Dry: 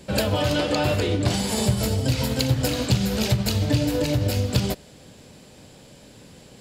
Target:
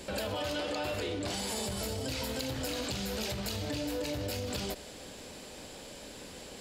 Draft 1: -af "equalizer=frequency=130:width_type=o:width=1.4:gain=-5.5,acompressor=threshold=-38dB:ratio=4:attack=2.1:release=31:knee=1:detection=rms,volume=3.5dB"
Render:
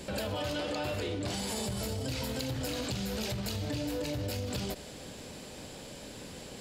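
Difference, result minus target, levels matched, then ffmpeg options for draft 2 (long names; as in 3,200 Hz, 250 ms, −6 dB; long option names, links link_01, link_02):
125 Hz band +3.5 dB
-af "equalizer=frequency=130:width_type=o:width=1.4:gain=-13,acompressor=threshold=-38dB:ratio=4:attack=2.1:release=31:knee=1:detection=rms,volume=3.5dB"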